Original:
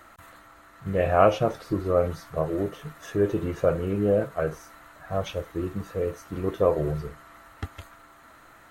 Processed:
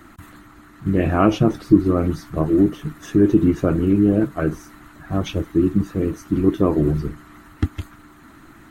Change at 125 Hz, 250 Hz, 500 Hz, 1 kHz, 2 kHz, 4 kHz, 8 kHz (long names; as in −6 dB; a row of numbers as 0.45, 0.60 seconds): +9.0 dB, +14.0 dB, +1.0 dB, +0.5 dB, +3.0 dB, +5.0 dB, can't be measured